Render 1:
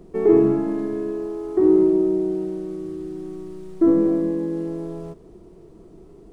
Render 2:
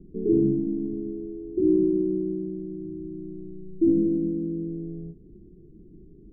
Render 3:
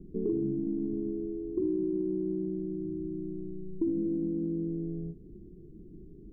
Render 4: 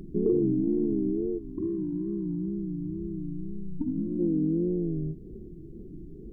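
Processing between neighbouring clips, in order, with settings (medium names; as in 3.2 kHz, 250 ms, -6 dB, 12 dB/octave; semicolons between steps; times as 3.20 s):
inverse Chebyshev low-pass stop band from 1.4 kHz, stop band 70 dB; endings held to a fixed fall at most 240 dB/s
compression 5:1, threshold -28 dBFS, peak gain reduction 11 dB
time-frequency box 1.39–4.20 s, 320–890 Hz -14 dB; wow and flutter 130 cents; trim +6 dB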